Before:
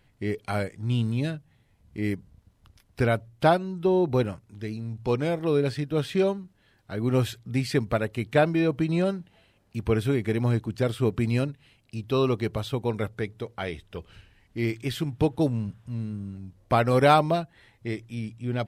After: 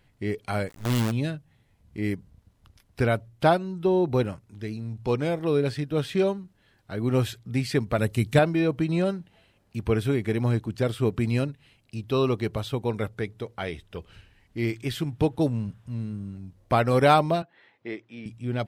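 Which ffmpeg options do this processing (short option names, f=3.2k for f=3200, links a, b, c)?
-filter_complex "[0:a]asplit=3[a][b][c];[a]afade=t=out:st=0.68:d=0.02[d];[b]acrusher=bits=5:dc=4:mix=0:aa=0.000001,afade=t=in:st=0.68:d=0.02,afade=t=out:st=1.1:d=0.02[e];[c]afade=t=in:st=1.1:d=0.02[f];[d][e][f]amix=inputs=3:normalize=0,asettb=1/sr,asplit=3[g][h][i];[g]atrim=end=7.984[j];[h]atrim=start=7.98:end=8.39,asetpts=PTS-STARTPTS,afade=t=in:d=0.004:c=qsin,afade=t=out:st=0.406:d=0.004:c=qsin,bass=f=250:g=8,treble=f=4k:g=11[k];[i]atrim=start=8.386[l];[j][k]acrossfade=d=0.004:c1=hsin:c2=qsin[m];[m][l]acrossfade=d=0.004:c1=qsin:c2=hsin,asettb=1/sr,asplit=3[n][o][p];[n]atrim=end=17.424[q];[o]atrim=start=17.42:end=18.26,asetpts=PTS-STARTPTS,afade=t=in:d=0.004:c=qsin,afade=t=out:st=0.836:d=0.004:c=qsin,highpass=300,lowpass=3.2k[r];[p]atrim=start=18.256[s];[q][r]acrossfade=d=0.004:c1=hsin:c2=qsin[t];[t][s]acrossfade=d=0.004:c1=qsin:c2=hsin"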